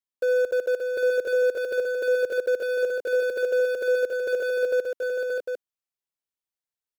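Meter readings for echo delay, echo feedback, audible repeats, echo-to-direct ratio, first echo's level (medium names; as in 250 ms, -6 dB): 62 ms, no regular repeats, 3, -2.0 dB, -14.5 dB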